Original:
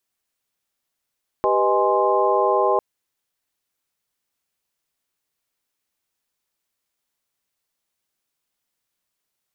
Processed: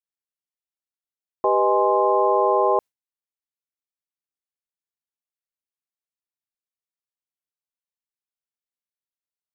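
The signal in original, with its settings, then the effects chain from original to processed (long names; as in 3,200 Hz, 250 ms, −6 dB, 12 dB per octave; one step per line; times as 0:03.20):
held notes G4/B4/D#5/G#5/C6 sine, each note −22 dBFS 1.35 s
noise gate with hold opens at −13 dBFS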